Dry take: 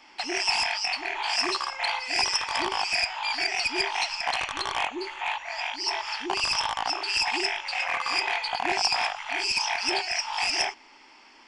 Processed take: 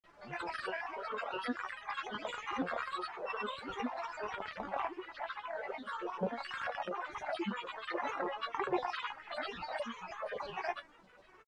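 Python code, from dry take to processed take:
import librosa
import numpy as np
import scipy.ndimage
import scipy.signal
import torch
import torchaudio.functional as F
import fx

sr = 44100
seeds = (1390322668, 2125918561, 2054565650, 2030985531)

y = fx.spec_dropout(x, sr, seeds[0], share_pct=27)
y = scipy.signal.sosfilt(scipy.signal.butter(2, 40.0, 'highpass', fs=sr, output='sos'), y)
y = fx.dmg_noise_colour(y, sr, seeds[1], colour='white', level_db=-48.0)
y = fx.high_shelf_res(y, sr, hz=2200.0, db=-10.0, q=1.5)
y = fx.comb_fb(y, sr, f0_hz=340.0, decay_s=0.2, harmonics='all', damping=0.0, mix_pct=90)
y = fx.granulator(y, sr, seeds[2], grain_ms=100.0, per_s=20.0, spray_ms=100.0, spread_st=12)
y = fx.spacing_loss(y, sr, db_at_10k=23)
y = y * 10.0 ** (8.5 / 20.0)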